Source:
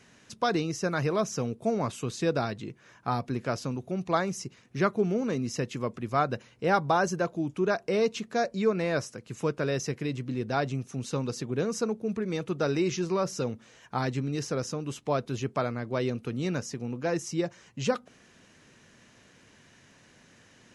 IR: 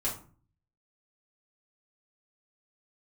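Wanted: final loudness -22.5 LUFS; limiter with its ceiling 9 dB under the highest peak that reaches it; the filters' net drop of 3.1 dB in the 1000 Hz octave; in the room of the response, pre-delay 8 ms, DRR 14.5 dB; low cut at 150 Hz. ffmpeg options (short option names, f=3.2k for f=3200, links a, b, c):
-filter_complex "[0:a]highpass=150,equalizer=f=1k:t=o:g=-4.5,alimiter=limit=-21dB:level=0:latency=1,asplit=2[a][b];[1:a]atrim=start_sample=2205,adelay=8[c];[b][c]afir=irnorm=-1:irlink=0,volume=-19.5dB[d];[a][d]amix=inputs=2:normalize=0,volume=10.5dB"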